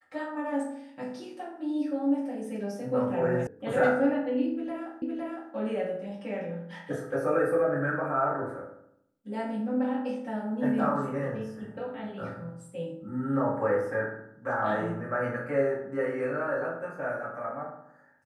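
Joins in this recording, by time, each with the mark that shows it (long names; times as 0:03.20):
0:03.47: cut off before it has died away
0:05.02: the same again, the last 0.51 s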